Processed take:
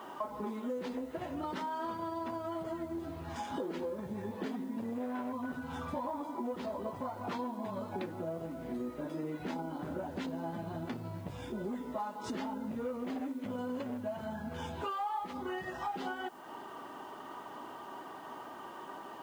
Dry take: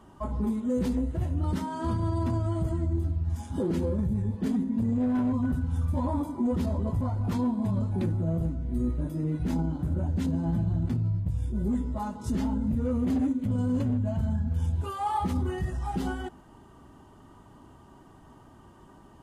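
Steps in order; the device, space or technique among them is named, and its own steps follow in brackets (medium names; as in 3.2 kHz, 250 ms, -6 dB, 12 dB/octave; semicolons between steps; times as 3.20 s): baby monitor (band-pass 490–3900 Hz; compression 6:1, threshold -48 dBFS, peak gain reduction 21 dB; white noise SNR 29 dB); trim +12 dB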